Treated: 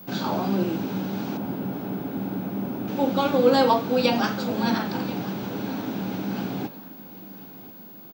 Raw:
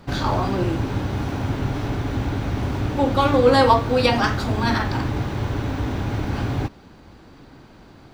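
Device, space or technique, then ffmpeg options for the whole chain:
old television with a line whistle: -filter_complex "[0:a]bandreject=frequency=145.9:width_type=h:width=4,bandreject=frequency=291.8:width_type=h:width=4,bandreject=frequency=437.7:width_type=h:width=4,bandreject=frequency=583.6:width_type=h:width=4,bandreject=frequency=729.5:width_type=h:width=4,bandreject=frequency=875.4:width_type=h:width=4,bandreject=frequency=1021.3:width_type=h:width=4,bandreject=frequency=1167.2:width_type=h:width=4,bandreject=frequency=1313.1:width_type=h:width=4,bandreject=frequency=1459:width_type=h:width=4,bandreject=frequency=1604.9:width_type=h:width=4,bandreject=frequency=1750.8:width_type=h:width=4,bandreject=frequency=1896.7:width_type=h:width=4,bandreject=frequency=2042.6:width_type=h:width=4,bandreject=frequency=2188.5:width_type=h:width=4,bandreject=frequency=2334.4:width_type=h:width=4,bandreject=frequency=2480.3:width_type=h:width=4,bandreject=frequency=2626.2:width_type=h:width=4,bandreject=frequency=2772.1:width_type=h:width=4,bandreject=frequency=2918:width_type=h:width=4,bandreject=frequency=3063.9:width_type=h:width=4,bandreject=frequency=3209.8:width_type=h:width=4,bandreject=frequency=3355.7:width_type=h:width=4,bandreject=frequency=3501.6:width_type=h:width=4,bandreject=frequency=3647.5:width_type=h:width=4,bandreject=frequency=3793.4:width_type=h:width=4,bandreject=frequency=3939.3:width_type=h:width=4,bandreject=frequency=4085.2:width_type=h:width=4,bandreject=frequency=4231.1:width_type=h:width=4,bandreject=frequency=4377:width_type=h:width=4,bandreject=frequency=4522.9:width_type=h:width=4,bandreject=frequency=4668.8:width_type=h:width=4,bandreject=frequency=4814.7:width_type=h:width=4,asettb=1/sr,asplit=3[link_01][link_02][link_03];[link_01]atrim=end=1.374[link_04];[link_02]atrim=start=1.37:end=2.88,asetpts=PTS-STARTPTS,afade=type=in:duration=0.004:curve=qsin,afade=type=out:start_time=1.506:duration=0.004:curve=qsin,equalizer=frequency=5500:width=0.37:gain=-11[link_05];[link_03]atrim=start=2.876[link_06];[link_04][link_05]acrossfade=duration=0.004:curve1=hsin:curve2=qsin[link_07];[link_07][link_06]acrossfade=duration=0.004:curve1=qsin:curve2=hsin,highpass=frequency=170:width=0.5412,highpass=frequency=170:width=1.3066,equalizer=frequency=190:width_type=q:width=4:gain=10,equalizer=frequency=1100:width_type=q:width=4:gain=-5,equalizer=frequency=1900:width_type=q:width=4:gain=-7,lowpass=frequency=7900:width=0.5412,lowpass=frequency=7900:width=1.3066,aecho=1:1:1033|2066|3099:0.133|0.04|0.012,aeval=exprs='val(0)+0.01*sin(2*PI*15625*n/s)':channel_layout=same,volume=-3dB"

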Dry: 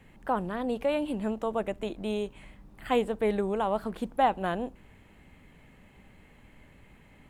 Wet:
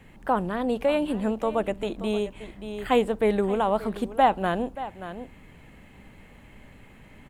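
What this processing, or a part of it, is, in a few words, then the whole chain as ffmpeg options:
ducked delay: -filter_complex "[0:a]asplit=3[link_01][link_02][link_03];[link_02]adelay=579,volume=-5dB[link_04];[link_03]apad=whole_len=347253[link_05];[link_04][link_05]sidechaincompress=threshold=-38dB:ratio=4:attack=16:release=974[link_06];[link_01][link_06]amix=inputs=2:normalize=0,volume=4.5dB"

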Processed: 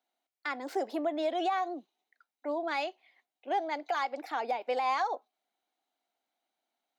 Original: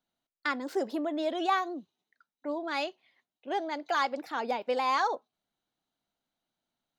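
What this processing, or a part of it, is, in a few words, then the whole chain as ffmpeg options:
laptop speaker: -af "highpass=frequency=270:width=0.5412,highpass=frequency=270:width=1.3066,equalizer=frequency=750:width_type=o:width=0.37:gain=9,equalizer=frequency=2200:width_type=o:width=0.4:gain=5.5,alimiter=limit=-21dB:level=0:latency=1:release=204,volume=-1dB"

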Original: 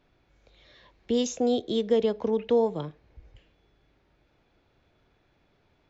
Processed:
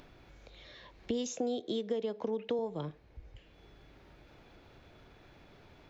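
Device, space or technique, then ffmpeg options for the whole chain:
upward and downward compression: -filter_complex "[0:a]acompressor=mode=upward:threshold=-47dB:ratio=2.5,acompressor=threshold=-31dB:ratio=6,asettb=1/sr,asplit=3[link_01][link_02][link_03];[link_01]atrim=end=1.284[link_04];[link_02]atrim=start=1.28:end=2.59,asetpts=PTS-STARTPTS,afade=type=in:duration=0.004:curve=qsin,afade=type=out:start_time=1.306:duration=0.004:curve=qsin,highpass=160[link_05];[link_03]atrim=start=2.586[link_06];[link_04][link_05]acrossfade=duration=0.004:curve1=hsin:curve2=qsin[link_07];[link_07][link_06]acrossfade=duration=0.004:curve1=qsin:curve2=hsin"

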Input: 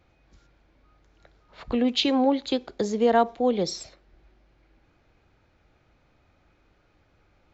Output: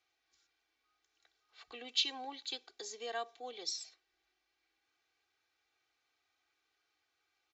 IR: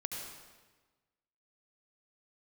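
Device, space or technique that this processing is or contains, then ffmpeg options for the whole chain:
piezo pickup straight into a mixer: -af "lowpass=6700,aderivative,aecho=1:1:2.6:0.82,volume=-2.5dB"

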